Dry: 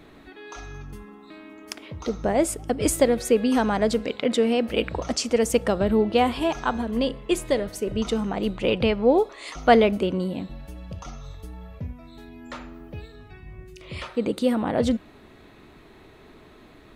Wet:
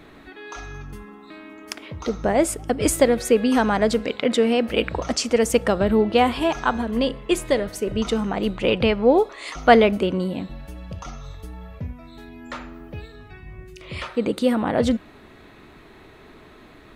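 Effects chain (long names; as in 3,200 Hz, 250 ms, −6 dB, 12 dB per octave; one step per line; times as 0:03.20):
parametric band 1,600 Hz +3 dB 1.5 octaves
level +2 dB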